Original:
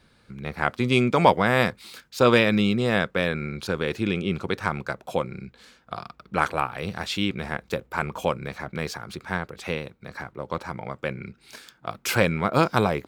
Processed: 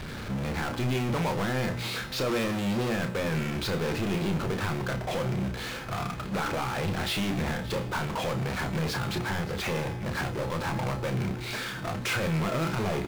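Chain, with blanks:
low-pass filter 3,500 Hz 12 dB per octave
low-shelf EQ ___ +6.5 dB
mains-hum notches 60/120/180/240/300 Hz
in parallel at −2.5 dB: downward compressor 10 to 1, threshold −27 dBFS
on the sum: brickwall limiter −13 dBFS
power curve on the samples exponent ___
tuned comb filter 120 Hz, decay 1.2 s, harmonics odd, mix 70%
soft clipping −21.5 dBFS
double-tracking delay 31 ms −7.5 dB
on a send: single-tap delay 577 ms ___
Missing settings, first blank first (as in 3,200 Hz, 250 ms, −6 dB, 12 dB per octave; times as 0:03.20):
190 Hz, 0.35, −17.5 dB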